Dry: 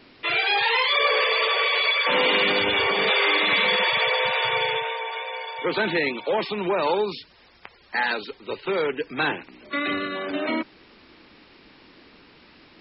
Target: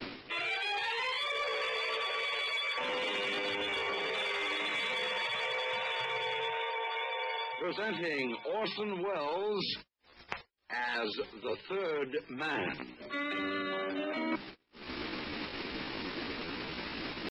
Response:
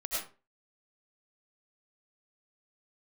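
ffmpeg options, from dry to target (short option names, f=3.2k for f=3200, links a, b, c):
-filter_complex "[0:a]asplit=2[a][b];[b]acompressor=mode=upward:threshold=-25dB:ratio=2.5,volume=1.5dB[c];[a][c]amix=inputs=2:normalize=0,bandreject=f=50:t=h:w=6,bandreject=f=100:t=h:w=6,bandreject=f=150:t=h:w=6,bandreject=f=200:t=h:w=6,asoftclip=type=tanh:threshold=-8dB,agate=range=-53dB:threshold=-35dB:ratio=16:detection=peak,areverse,acompressor=threshold=-31dB:ratio=10,areverse,atempo=0.74,volume=-1.5dB"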